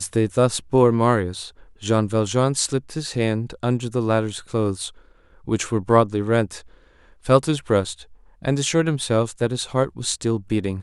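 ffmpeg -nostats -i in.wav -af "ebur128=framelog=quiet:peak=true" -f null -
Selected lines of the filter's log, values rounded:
Integrated loudness:
  I:         -21.6 LUFS
  Threshold: -32.2 LUFS
Loudness range:
  LRA:         2.8 LU
  Threshold: -42.5 LUFS
  LRA low:   -23.8 LUFS
  LRA high:  -21.0 LUFS
True peak:
  Peak:       -2.8 dBFS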